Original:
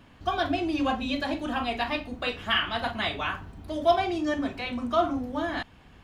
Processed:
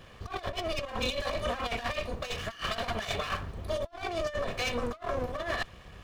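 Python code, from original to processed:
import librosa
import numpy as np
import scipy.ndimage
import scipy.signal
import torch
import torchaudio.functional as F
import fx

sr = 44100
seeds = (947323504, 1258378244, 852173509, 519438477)

y = fx.lower_of_two(x, sr, delay_ms=1.7)
y = fx.over_compress(y, sr, threshold_db=-34.0, ratio=-0.5)
y = y * 10.0 ** (1.0 / 20.0)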